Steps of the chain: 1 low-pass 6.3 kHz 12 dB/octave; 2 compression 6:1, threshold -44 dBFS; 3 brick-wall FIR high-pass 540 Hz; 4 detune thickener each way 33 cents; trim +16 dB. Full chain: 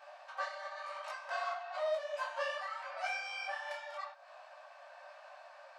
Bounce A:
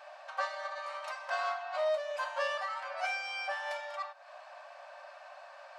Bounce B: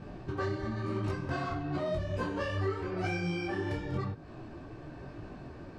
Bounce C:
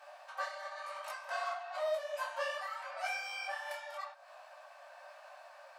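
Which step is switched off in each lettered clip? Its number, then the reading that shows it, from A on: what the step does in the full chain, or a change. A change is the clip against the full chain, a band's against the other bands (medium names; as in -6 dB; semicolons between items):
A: 4, loudness change +3.5 LU; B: 3, 500 Hz band +4.5 dB; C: 1, 8 kHz band +4.0 dB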